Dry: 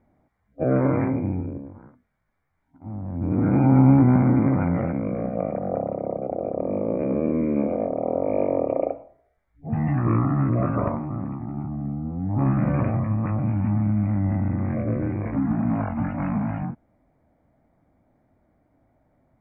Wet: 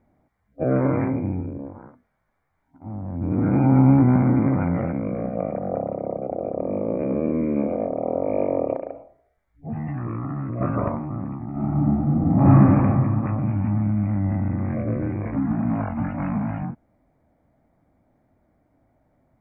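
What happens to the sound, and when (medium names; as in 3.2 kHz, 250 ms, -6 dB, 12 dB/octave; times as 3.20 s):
1.58–3.15 s: peaking EQ 730 Hz +9 dB -> +2 dB 2.4 oct
8.76–10.61 s: compression, threshold -25 dBFS
11.50–12.53 s: reverb throw, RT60 2.4 s, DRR -9.5 dB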